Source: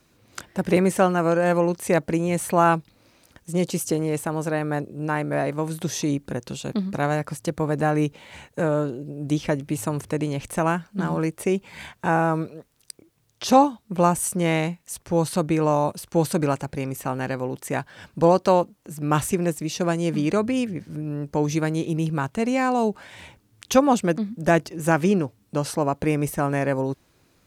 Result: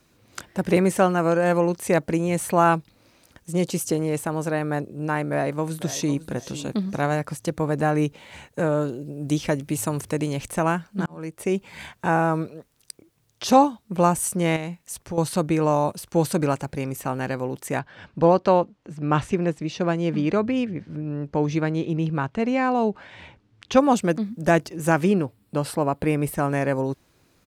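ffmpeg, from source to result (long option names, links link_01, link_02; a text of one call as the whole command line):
ffmpeg -i in.wav -filter_complex "[0:a]asplit=2[link_01][link_02];[link_02]afade=type=in:start_time=5.29:duration=0.01,afade=type=out:start_time=6.21:duration=0.01,aecho=0:1:500|1000|1500:0.188365|0.0470912|0.0117728[link_03];[link_01][link_03]amix=inputs=2:normalize=0,asettb=1/sr,asplit=3[link_04][link_05][link_06];[link_04]atrim=end=8.814[link_07];[link_05]atrim=start=8.81:end=10.48,asetpts=PTS-STARTPTS,afade=type=in:duration=0.004:curve=qsin,afade=type=out:start_time=1.666:duration=0.004:curve=qsin,highshelf=frequency=4400:gain=5.5[link_08];[link_06]atrim=start=10.476[link_09];[link_07][link_08]acrossfade=duration=0.004:curve1=hsin:curve2=qsin[link_10];[link_10][link_09]acrossfade=duration=0.004:curve1=qsin:curve2=hsin,asettb=1/sr,asplit=3[link_11][link_12][link_13];[link_11]atrim=end=14.564[link_14];[link_12]atrim=start=14.56:end=15.18,asetpts=PTS-STARTPTS,afade=type=in:duration=0.004:curve=qsin,afade=type=out:start_time=0.616:duration=0.004:curve=qsin,acompressor=threshold=-28dB:ratio=3:attack=3.2:release=140:knee=1:detection=peak[link_15];[link_13]atrim=start=15.176[link_16];[link_14][link_15]acrossfade=duration=0.004:curve1=hsin:curve2=qsin[link_17];[link_17][link_16]acrossfade=duration=0.004:curve1=qsin:curve2=hsin,asettb=1/sr,asplit=3[link_18][link_19][link_20];[link_18]atrim=end=17.794[link_21];[link_19]atrim=start=17.79:end=23.77,asetpts=PTS-STARTPTS,afade=type=in:duration=0.004:curve=qsin,afade=type=out:start_time=5.976:duration=0.004:curve=qsin,lowpass=3800[link_22];[link_20]atrim=start=23.766[link_23];[link_21][link_22]acrossfade=duration=0.004:curve1=hsin:curve2=qsin[link_24];[link_24][link_23]acrossfade=duration=0.004:curve1=qsin:curve2=hsin,asettb=1/sr,asplit=3[link_25][link_26][link_27];[link_25]atrim=end=25.054[link_28];[link_26]atrim=start=25.05:end=26.35,asetpts=PTS-STARTPTS,afade=type=in:duration=0.004:curve=qsin,afade=type=out:start_time=1.296:duration=0.004:curve=qsin,equalizer=frequency=6200:width=3.7:gain=-12[link_29];[link_27]atrim=start=26.346[link_30];[link_28][link_29]acrossfade=duration=0.004:curve1=hsin:curve2=qsin[link_31];[link_31][link_30]acrossfade=duration=0.004:curve1=qsin:curve2=hsin,asplit=2[link_32][link_33];[link_32]atrim=end=11.06,asetpts=PTS-STARTPTS,afade=type=out:start_time=11.056:duration=0.004:curve=hsin[link_34];[link_33]atrim=start=11.06,asetpts=PTS-STARTPTS,afade=type=in:duration=0.51[link_35];[link_34][link_35]concat=n=2:v=0:a=1" out.wav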